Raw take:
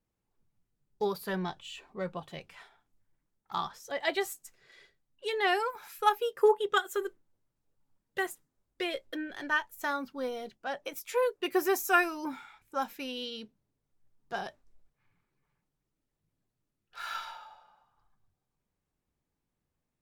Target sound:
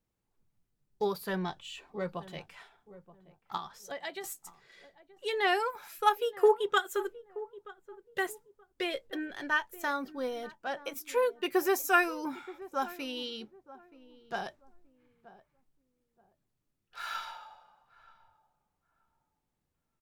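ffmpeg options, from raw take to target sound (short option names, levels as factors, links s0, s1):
-filter_complex "[0:a]asettb=1/sr,asplit=3[s0][s1][s2];[s0]atrim=end=3.564[s3];[s1]atrim=start=3.56:end=4.24,asetpts=PTS-STARTPTS,afade=t=in:d=0.004:c=qsin,afade=t=out:st=0.676:d=0.004:c=qsin,acompressor=threshold=0.0158:ratio=10[s4];[s2]atrim=start=4.236[s5];[s3][s4]acrossfade=d=0.004:c1=hsin:c2=qsin[s6];[s6][s5]acrossfade=d=0.004:c1=qsin:c2=hsin,asplit=2[s7][s8];[s8]adelay=927,lowpass=f=800:p=1,volume=0.158,asplit=2[s9][s10];[s10]adelay=927,lowpass=f=800:p=1,volume=0.29,asplit=2[s11][s12];[s12]adelay=927,lowpass=f=800:p=1,volume=0.29[s13];[s7][s9][s11][s13]amix=inputs=4:normalize=0"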